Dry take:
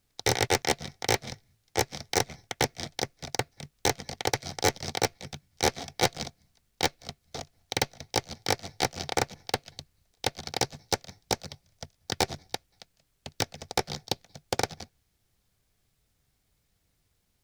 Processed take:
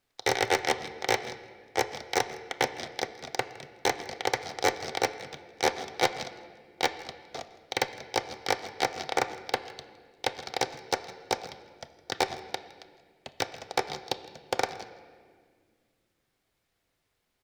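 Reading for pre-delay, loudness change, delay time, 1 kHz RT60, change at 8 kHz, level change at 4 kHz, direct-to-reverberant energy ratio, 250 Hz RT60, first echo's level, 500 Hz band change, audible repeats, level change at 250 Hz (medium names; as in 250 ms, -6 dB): 8 ms, -0.5 dB, 162 ms, 1.6 s, -5.5 dB, -2.5 dB, 9.5 dB, 3.0 s, -21.0 dB, +0.5 dB, 1, -3.0 dB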